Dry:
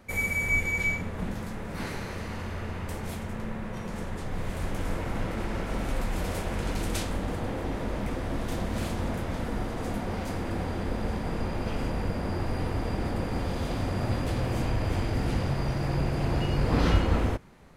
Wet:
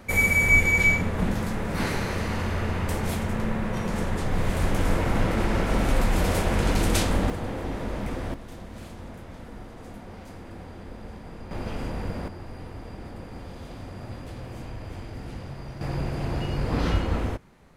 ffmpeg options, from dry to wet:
-af "asetnsamples=n=441:p=0,asendcmd='7.3 volume volume 0.5dB;8.34 volume volume -10dB;11.51 volume volume -1.5dB;12.28 volume volume -9.5dB;15.81 volume volume -1.5dB',volume=2.37"

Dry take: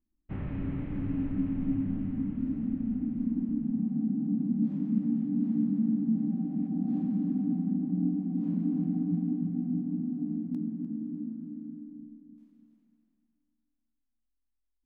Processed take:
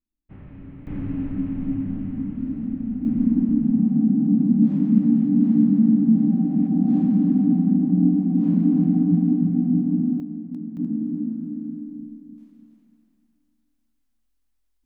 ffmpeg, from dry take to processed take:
-af "asetnsamples=n=441:p=0,asendcmd='0.87 volume volume 4dB;3.05 volume volume 11dB;10.2 volume volume 1dB;10.77 volume volume 10dB',volume=0.447"

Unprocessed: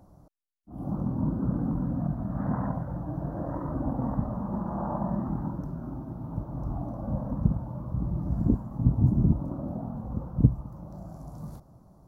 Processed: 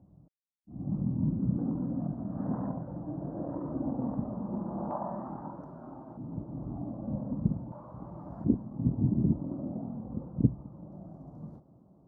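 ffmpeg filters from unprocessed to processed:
-af "asetnsamples=n=441:p=0,asendcmd='1.58 bandpass f 340;4.91 bandpass f 750;6.17 bandpass f 280;7.72 bandpass f 850;8.44 bandpass f 300',bandpass=f=160:t=q:w=0.93:csg=0"

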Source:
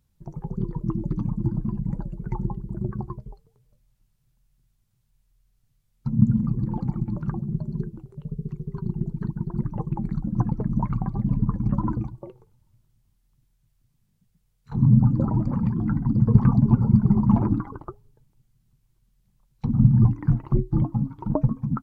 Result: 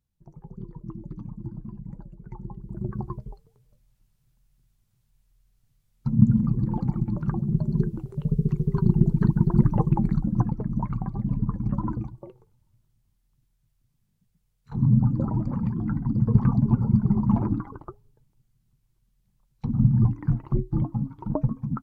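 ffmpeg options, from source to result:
-af "volume=2.66,afade=t=in:st=2.43:d=0.73:silence=0.251189,afade=t=in:st=7.25:d=1.03:silence=0.421697,afade=t=out:st=9.63:d=0.93:silence=0.266073"

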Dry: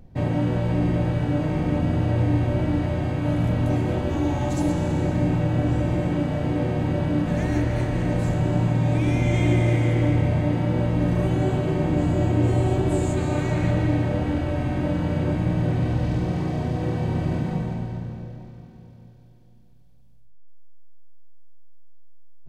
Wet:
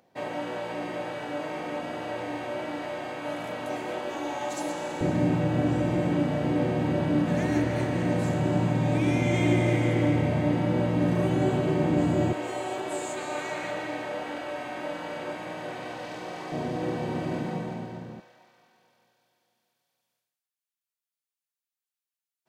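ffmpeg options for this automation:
-af "asetnsamples=n=441:p=0,asendcmd='5.01 highpass f 160;12.33 highpass f 630;16.52 highpass f 250;18.2 highpass f 970',highpass=560"

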